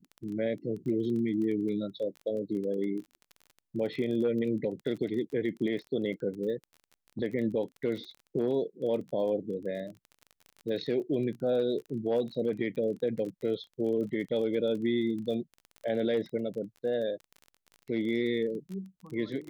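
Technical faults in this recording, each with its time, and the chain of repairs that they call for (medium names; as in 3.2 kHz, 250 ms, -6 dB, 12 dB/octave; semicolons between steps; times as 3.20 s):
crackle 25 per s -38 dBFS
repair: de-click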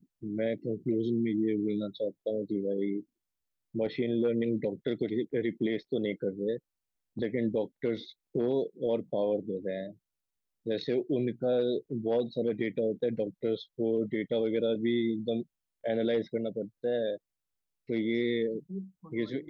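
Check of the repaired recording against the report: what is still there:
nothing left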